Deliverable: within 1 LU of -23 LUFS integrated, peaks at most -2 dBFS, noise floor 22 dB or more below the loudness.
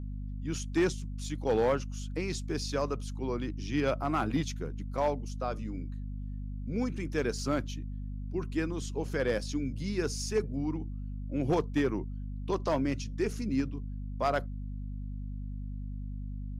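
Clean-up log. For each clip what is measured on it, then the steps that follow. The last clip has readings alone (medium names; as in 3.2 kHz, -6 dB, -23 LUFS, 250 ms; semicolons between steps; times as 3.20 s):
clipped samples 0.3%; clipping level -20.5 dBFS; hum 50 Hz; highest harmonic 250 Hz; hum level -35 dBFS; loudness -33.5 LUFS; peak level -20.5 dBFS; loudness target -23.0 LUFS
-> clip repair -20.5 dBFS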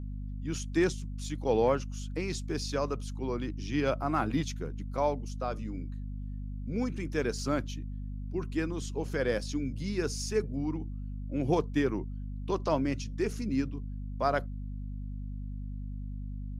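clipped samples 0.0%; hum 50 Hz; highest harmonic 250 Hz; hum level -35 dBFS
-> hum notches 50/100/150/200/250 Hz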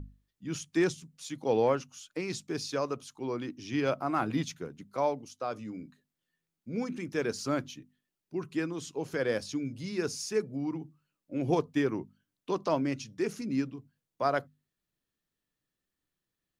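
hum not found; loudness -33.0 LUFS; peak level -14.0 dBFS; loudness target -23.0 LUFS
-> trim +10 dB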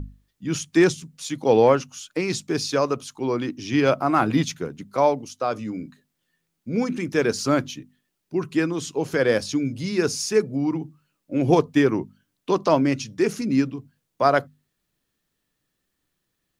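loudness -23.0 LUFS; peak level -4.0 dBFS; noise floor -77 dBFS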